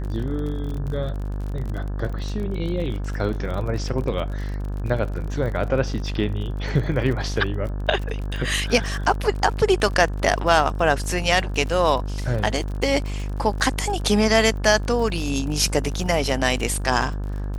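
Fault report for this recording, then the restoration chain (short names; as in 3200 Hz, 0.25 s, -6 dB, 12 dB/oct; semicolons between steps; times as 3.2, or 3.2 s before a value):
buzz 50 Hz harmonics 35 -27 dBFS
crackle 38/s -30 dBFS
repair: de-click; de-hum 50 Hz, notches 35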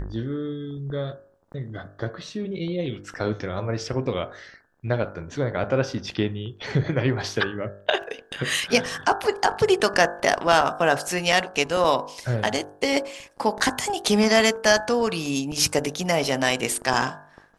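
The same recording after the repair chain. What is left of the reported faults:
none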